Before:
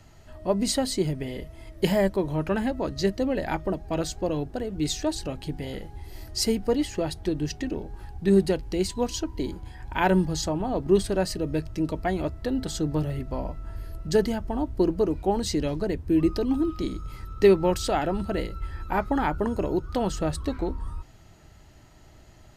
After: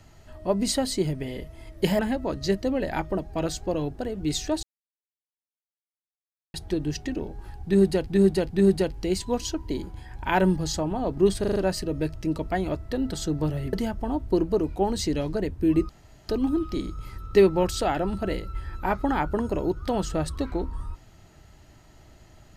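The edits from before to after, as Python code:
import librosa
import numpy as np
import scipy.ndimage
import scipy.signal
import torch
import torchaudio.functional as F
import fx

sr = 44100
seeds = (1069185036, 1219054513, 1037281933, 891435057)

y = fx.edit(x, sr, fx.cut(start_s=1.99, length_s=0.55),
    fx.silence(start_s=5.18, length_s=1.91),
    fx.repeat(start_s=8.19, length_s=0.43, count=3),
    fx.stutter(start_s=11.09, slice_s=0.04, count=5),
    fx.cut(start_s=13.26, length_s=0.94),
    fx.insert_room_tone(at_s=16.36, length_s=0.4), tone=tone)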